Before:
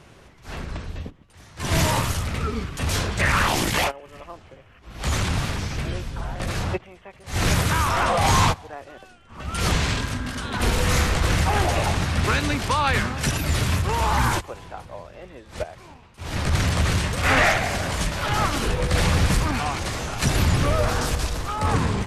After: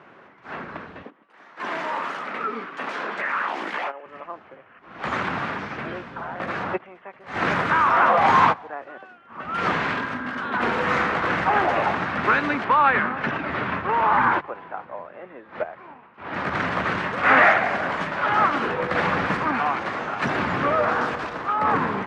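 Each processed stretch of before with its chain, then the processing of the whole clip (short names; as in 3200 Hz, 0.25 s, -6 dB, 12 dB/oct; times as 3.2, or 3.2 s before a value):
1.03–4.06 Bessel high-pass 300 Hz, order 4 + compressor, threshold -26 dBFS
12.64–16.34 LPF 3300 Hz + notches 50/100/150 Hz
whole clip: Chebyshev band-pass 220–1500 Hz, order 2; tilt shelf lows -5 dB, about 720 Hz; gain +4 dB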